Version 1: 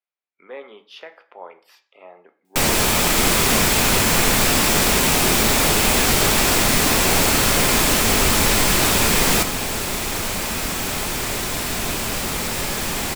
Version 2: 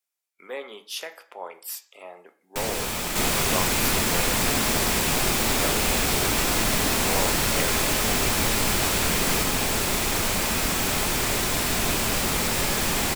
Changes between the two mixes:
speech: remove distance through air 310 m; first sound -11.0 dB

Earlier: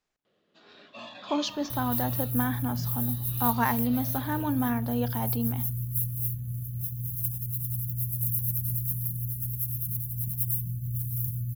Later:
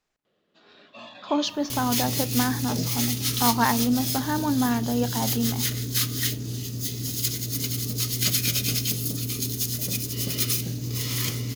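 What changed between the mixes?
speech +4.0 dB; second sound: remove inverse Chebyshev band-stop 560–3900 Hz, stop band 70 dB

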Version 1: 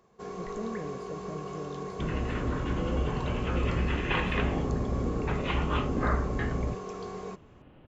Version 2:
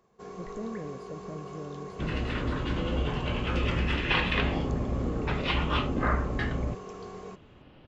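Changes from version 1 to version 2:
first sound -3.5 dB; second sound: remove distance through air 350 m

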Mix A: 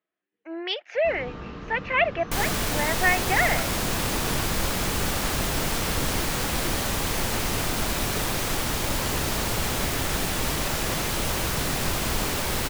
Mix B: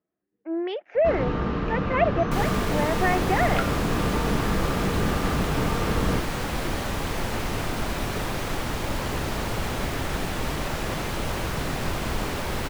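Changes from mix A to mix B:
speech: add tilt EQ -4.5 dB/octave; first sound +11.5 dB; master: add treble shelf 3.8 kHz -11.5 dB

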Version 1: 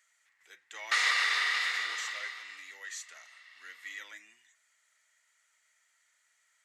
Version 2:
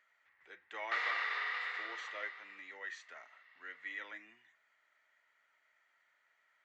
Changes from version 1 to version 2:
speech +8.0 dB; master: add tape spacing loss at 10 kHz 42 dB

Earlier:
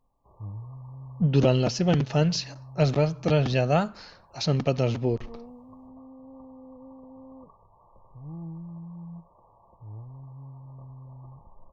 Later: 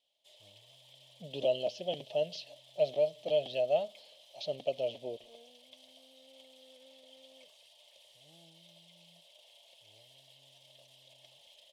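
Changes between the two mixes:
background: remove brick-wall FIR low-pass 1.2 kHz; master: add two resonant band-passes 1.4 kHz, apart 2.4 oct

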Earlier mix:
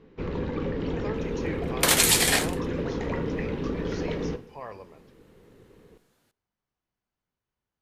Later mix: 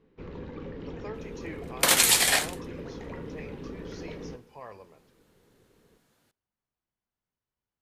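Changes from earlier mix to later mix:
speech -4.5 dB; first sound -10.0 dB

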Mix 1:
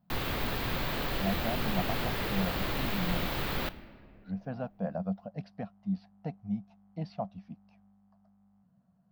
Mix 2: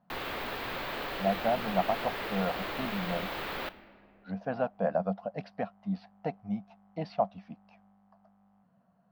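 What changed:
speech +9.0 dB; master: add tone controls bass -14 dB, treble -8 dB

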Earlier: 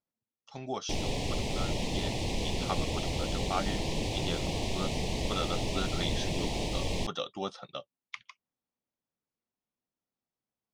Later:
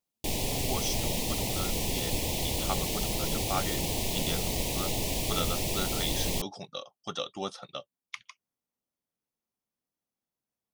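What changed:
background: entry -0.65 s; master: remove distance through air 98 m

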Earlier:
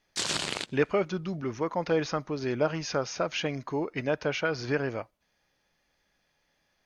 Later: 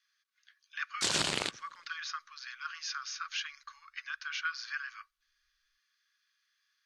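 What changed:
speech: add rippled Chebyshev high-pass 1.1 kHz, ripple 6 dB; background: entry +0.85 s

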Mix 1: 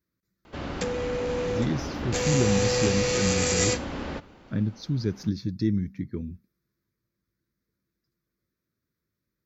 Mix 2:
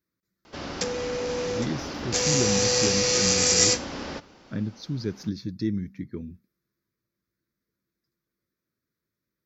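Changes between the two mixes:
background: add peaking EQ 5.4 kHz +11 dB 0.72 oct; master: add bass shelf 130 Hz -8.5 dB

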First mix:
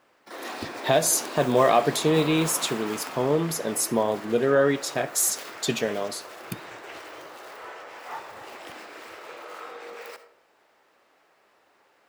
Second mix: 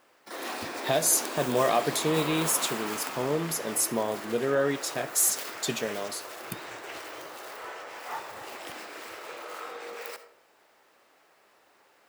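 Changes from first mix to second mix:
speech -5.5 dB; master: add treble shelf 6 kHz +7.5 dB

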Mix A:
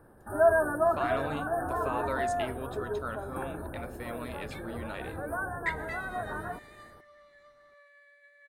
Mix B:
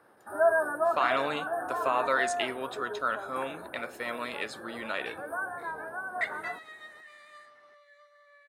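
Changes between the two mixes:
speech +8.0 dB; second sound: entry +0.55 s; master: add frequency weighting A

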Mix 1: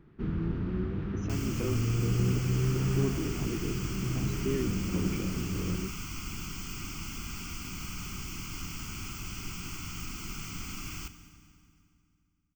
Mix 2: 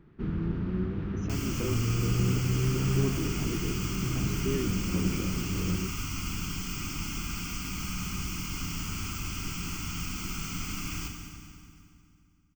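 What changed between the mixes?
first sound: send on; second sound: send +10.5 dB

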